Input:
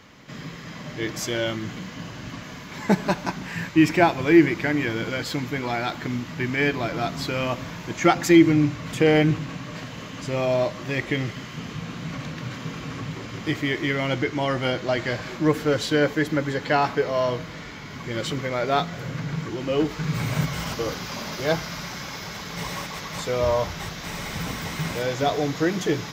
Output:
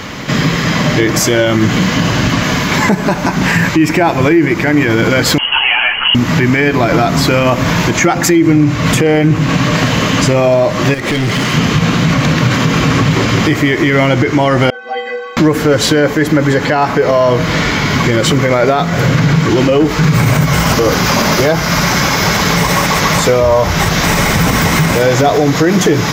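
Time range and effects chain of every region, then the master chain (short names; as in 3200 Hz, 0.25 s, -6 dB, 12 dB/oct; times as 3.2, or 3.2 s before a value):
5.38–6.15 air absorption 400 m + inverted band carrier 3100 Hz + ensemble effect
10.94–11.54 HPF 90 Hz + compressor 5:1, threshold -31 dBFS + hard clip -35.5 dBFS
14.7–15.37 three-band isolator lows -23 dB, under 370 Hz, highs -16 dB, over 3000 Hz + metallic resonator 230 Hz, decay 0.71 s, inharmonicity 0.03
whole clip: dynamic EQ 3700 Hz, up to -5 dB, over -42 dBFS, Q 1.2; compressor 2.5:1, threshold -32 dBFS; maximiser +26 dB; gain -1 dB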